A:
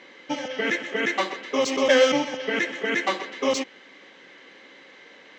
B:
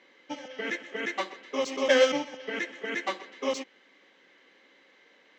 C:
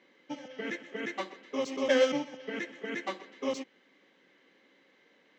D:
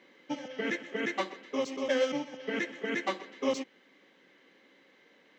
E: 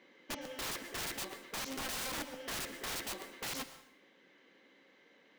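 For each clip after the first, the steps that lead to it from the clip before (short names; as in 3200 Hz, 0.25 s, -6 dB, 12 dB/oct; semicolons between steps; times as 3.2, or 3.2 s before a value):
HPF 160 Hz; upward expander 1.5:1, over -31 dBFS; gain -2.5 dB
bell 140 Hz +9 dB 2.7 oct; gain -6 dB
vocal rider within 4 dB 0.5 s
wrapped overs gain 31.5 dB; plate-style reverb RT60 0.62 s, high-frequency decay 0.9×, pre-delay 0.1 s, DRR 12.5 dB; gain -3 dB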